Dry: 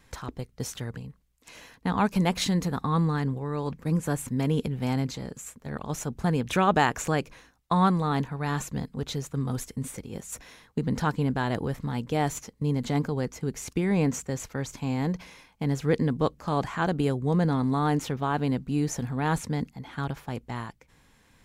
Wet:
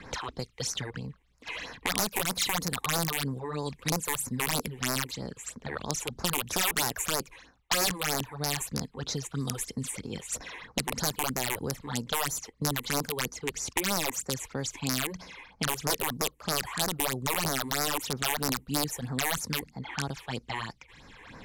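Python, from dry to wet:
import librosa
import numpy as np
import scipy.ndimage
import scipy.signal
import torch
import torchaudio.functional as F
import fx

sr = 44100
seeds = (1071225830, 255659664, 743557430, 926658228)

y = (np.mod(10.0 ** (18.0 / 20.0) * x + 1.0, 2.0) - 1.0) / 10.0 ** (18.0 / 20.0)
y = fx.high_shelf(y, sr, hz=5600.0, db=8.5)
y = fx.phaser_stages(y, sr, stages=8, low_hz=170.0, high_hz=3200.0, hz=3.1, feedback_pct=25)
y = fx.low_shelf(y, sr, hz=370.0, db=-8.0)
y = fx.env_lowpass(y, sr, base_hz=2200.0, full_db=-27.5)
y = fx.band_squash(y, sr, depth_pct=70)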